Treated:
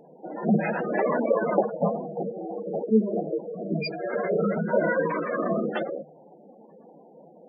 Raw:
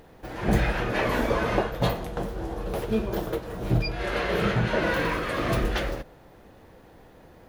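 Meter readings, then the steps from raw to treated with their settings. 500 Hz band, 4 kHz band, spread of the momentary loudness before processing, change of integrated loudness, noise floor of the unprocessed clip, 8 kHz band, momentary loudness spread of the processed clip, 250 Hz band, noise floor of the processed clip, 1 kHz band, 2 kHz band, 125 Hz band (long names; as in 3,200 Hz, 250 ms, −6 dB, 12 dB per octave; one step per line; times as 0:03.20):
+3.0 dB, −10.5 dB, 8 LU, +0.5 dB, −52 dBFS, below −35 dB, 9 LU, +2.5 dB, −52 dBFS, −0.5 dB, −4.0 dB, −6.0 dB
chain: Chebyshev high-pass with heavy ripple 150 Hz, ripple 3 dB
gate on every frequency bin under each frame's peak −10 dB strong
flanger 0.82 Hz, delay 1.1 ms, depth 4.1 ms, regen +76%
level +8.5 dB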